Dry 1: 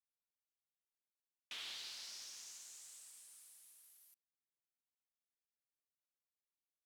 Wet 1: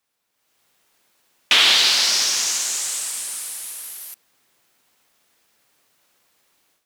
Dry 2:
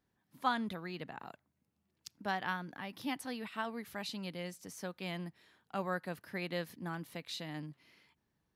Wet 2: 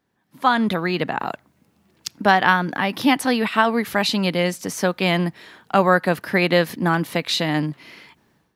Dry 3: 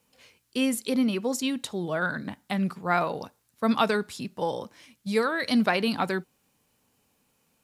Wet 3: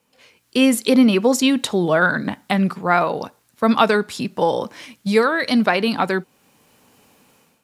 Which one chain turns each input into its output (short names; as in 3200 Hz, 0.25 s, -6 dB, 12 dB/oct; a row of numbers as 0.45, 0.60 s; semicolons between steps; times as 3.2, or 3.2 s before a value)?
low shelf 95 Hz -12 dB; in parallel at -1 dB: compressor, threshold -36 dBFS; on the sum: high shelf 4100 Hz -5.5 dB; AGC gain up to 13 dB; normalise peaks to -2 dBFS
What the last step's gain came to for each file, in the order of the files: +17.0, +4.5, -1.0 dB